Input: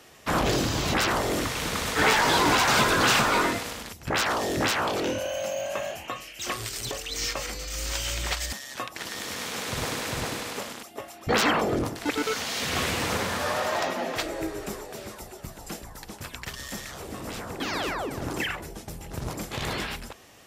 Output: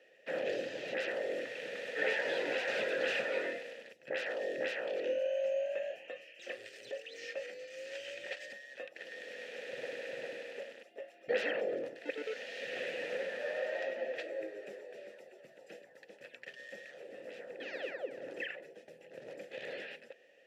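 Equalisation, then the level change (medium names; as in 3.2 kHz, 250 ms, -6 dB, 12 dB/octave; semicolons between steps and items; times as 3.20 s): vowel filter e; high-pass 130 Hz 24 dB/octave; 0.0 dB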